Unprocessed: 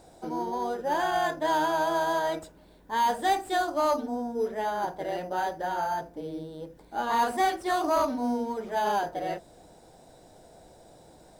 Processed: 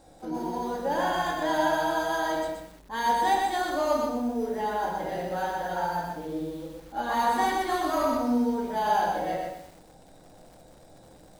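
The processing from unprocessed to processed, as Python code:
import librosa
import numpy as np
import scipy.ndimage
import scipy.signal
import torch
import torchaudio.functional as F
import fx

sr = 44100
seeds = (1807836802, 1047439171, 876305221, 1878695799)

y = fx.room_shoebox(x, sr, seeds[0], volume_m3=600.0, walls='furnished', distance_m=2.2)
y = fx.echo_crushed(y, sr, ms=123, feedback_pct=35, bits=8, wet_db=-3.0)
y = y * librosa.db_to_amplitude(-3.5)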